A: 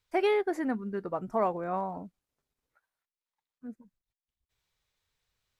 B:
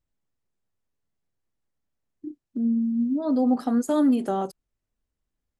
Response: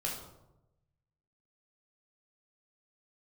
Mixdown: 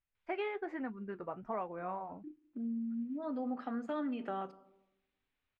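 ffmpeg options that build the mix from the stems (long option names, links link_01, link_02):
-filter_complex "[0:a]flanger=delay=3.3:depth=5:regen=-67:speed=1.3:shape=sinusoidal,equalizer=frequency=1900:width_type=o:width=1.5:gain=-8,adelay=150,volume=-4dB[link_01];[1:a]volume=-14dB,asplit=2[link_02][link_03];[link_03]volume=-17.5dB[link_04];[2:a]atrim=start_sample=2205[link_05];[link_04][link_05]afir=irnorm=-1:irlink=0[link_06];[link_01][link_02][link_06]amix=inputs=3:normalize=0,lowpass=frequency=2600:width_type=q:width=2.1,equalizer=frequency=1600:width_type=o:width=1.9:gain=8,acompressor=threshold=-37dB:ratio=2"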